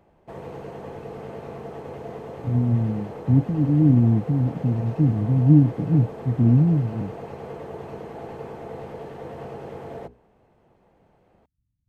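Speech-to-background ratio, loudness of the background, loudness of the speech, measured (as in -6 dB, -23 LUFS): 16.5 dB, -37.0 LUFS, -20.5 LUFS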